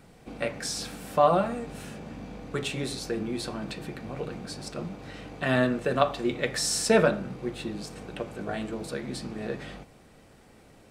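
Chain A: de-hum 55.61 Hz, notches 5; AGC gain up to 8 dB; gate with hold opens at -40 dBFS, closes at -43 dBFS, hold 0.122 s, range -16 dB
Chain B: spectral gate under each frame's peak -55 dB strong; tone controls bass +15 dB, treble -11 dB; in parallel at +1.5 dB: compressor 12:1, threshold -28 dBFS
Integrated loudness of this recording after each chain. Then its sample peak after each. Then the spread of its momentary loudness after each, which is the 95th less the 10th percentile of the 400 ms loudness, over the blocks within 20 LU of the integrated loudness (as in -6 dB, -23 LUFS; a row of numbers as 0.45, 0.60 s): -23.5, -22.0 LUFS; -1.5, -3.0 dBFS; 15, 12 LU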